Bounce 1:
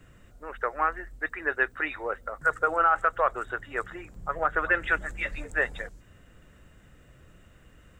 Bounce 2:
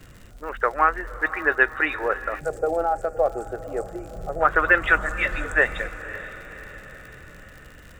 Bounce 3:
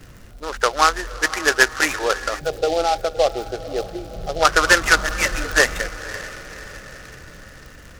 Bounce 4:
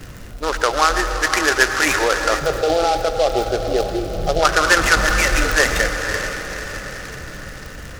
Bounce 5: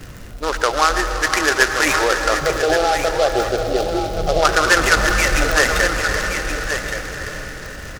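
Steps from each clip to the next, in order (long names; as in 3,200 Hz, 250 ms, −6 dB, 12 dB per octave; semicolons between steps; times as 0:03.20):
feedback delay with all-pass diffusion 535 ms, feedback 54%, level −14.5 dB; gain on a spectral selection 0:02.40–0:04.41, 860–4,300 Hz −20 dB; surface crackle 79 per second −43 dBFS; level +7 dB
short delay modulated by noise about 3,600 Hz, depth 0.05 ms; level +3.5 dB
in parallel at 0 dB: compressor whose output falls as the input rises −23 dBFS, ratio −0.5; on the sum: convolution reverb RT60 2.5 s, pre-delay 82 ms, DRR 8.5 dB; level −1 dB
single-tap delay 1,124 ms −8 dB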